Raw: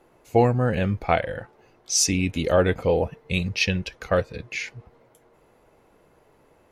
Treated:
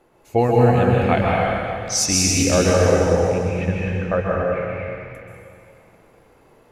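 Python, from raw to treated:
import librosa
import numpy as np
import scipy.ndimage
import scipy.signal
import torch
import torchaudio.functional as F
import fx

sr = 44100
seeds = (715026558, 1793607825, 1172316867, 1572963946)

y = fx.lowpass(x, sr, hz=1800.0, slope=24, at=(2.59, 4.77))
y = fx.rev_plate(y, sr, seeds[0], rt60_s=2.5, hf_ratio=1.0, predelay_ms=120, drr_db=-4.5)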